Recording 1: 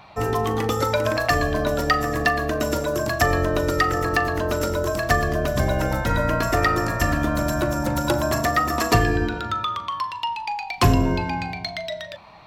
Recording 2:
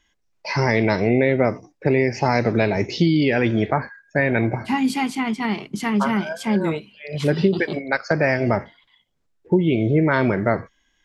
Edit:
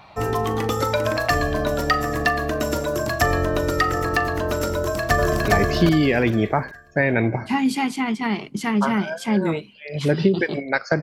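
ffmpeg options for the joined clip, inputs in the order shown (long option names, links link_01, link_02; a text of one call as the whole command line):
ffmpeg -i cue0.wav -i cue1.wav -filter_complex "[0:a]apad=whole_dur=11.02,atrim=end=11.02,atrim=end=5.482[link_01];[1:a]atrim=start=2.668:end=8.21[link_02];[link_01][link_02]acrossfade=duration=0.004:curve1=hsin:curve2=hsin,asplit=2[link_03][link_04];[link_04]afade=type=in:start_time=4.77:duration=0.01,afade=type=out:start_time=5.48:duration=0.01,aecho=0:1:410|820|1230|1640:1|0.3|0.09|0.027[link_05];[link_03][link_05]amix=inputs=2:normalize=0" out.wav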